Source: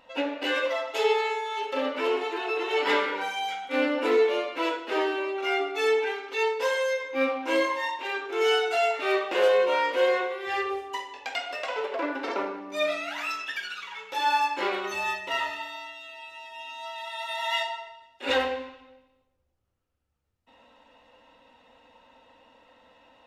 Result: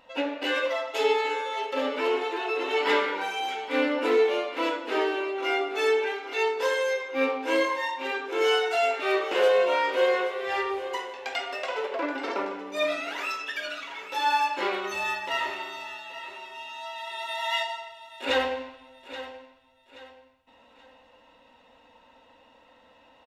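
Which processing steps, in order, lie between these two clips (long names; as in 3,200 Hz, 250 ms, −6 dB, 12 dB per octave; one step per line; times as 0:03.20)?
0:17.69–0:18.25: high-shelf EQ 7,700 Hz +10.5 dB
on a send: repeating echo 828 ms, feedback 34%, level −13.5 dB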